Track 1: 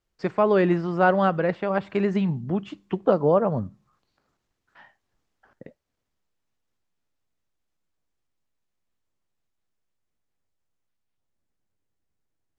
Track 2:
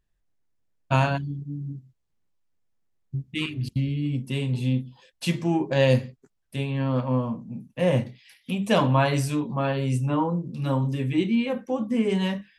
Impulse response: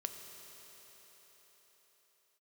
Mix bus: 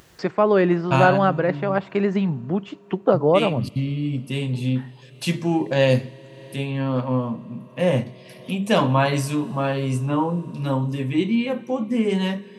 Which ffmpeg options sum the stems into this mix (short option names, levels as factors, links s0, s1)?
-filter_complex "[0:a]volume=1.26,asplit=2[s0][s1];[s1]volume=0.0668[s2];[1:a]volume=1.12,asplit=2[s3][s4];[s4]volume=0.266[s5];[2:a]atrim=start_sample=2205[s6];[s2][s5]amix=inputs=2:normalize=0[s7];[s7][s6]afir=irnorm=-1:irlink=0[s8];[s0][s3][s8]amix=inputs=3:normalize=0,highpass=110,acompressor=mode=upward:threshold=0.0251:ratio=2.5"